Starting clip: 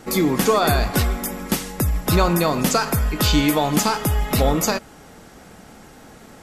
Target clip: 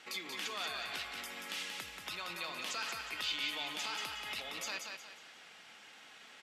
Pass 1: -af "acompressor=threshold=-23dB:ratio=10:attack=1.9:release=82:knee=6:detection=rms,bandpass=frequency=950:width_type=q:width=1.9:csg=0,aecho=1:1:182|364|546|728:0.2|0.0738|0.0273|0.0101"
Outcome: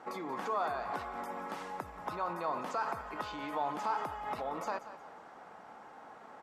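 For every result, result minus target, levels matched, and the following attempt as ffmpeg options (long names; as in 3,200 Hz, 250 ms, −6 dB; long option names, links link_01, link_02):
4,000 Hz band −16.5 dB; echo-to-direct −9 dB
-af "acompressor=threshold=-23dB:ratio=10:attack=1.9:release=82:knee=6:detection=rms,bandpass=frequency=2900:width_type=q:width=1.9:csg=0,aecho=1:1:182|364|546|728:0.2|0.0738|0.0273|0.0101"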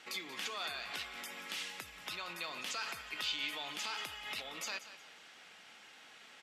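echo-to-direct −9 dB
-af "acompressor=threshold=-23dB:ratio=10:attack=1.9:release=82:knee=6:detection=rms,bandpass=frequency=2900:width_type=q:width=1.9:csg=0,aecho=1:1:182|364|546|728|910:0.562|0.208|0.077|0.0285|0.0105"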